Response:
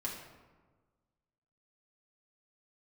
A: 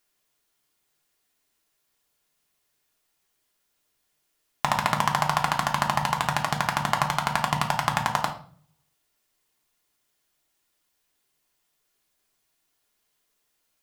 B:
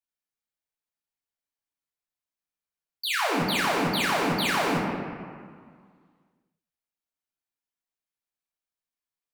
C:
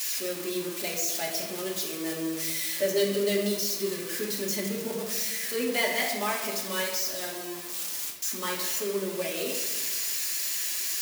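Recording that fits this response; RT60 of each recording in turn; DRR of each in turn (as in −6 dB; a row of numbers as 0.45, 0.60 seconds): C; 0.50, 1.9, 1.4 seconds; 1.0, −4.0, −4.0 decibels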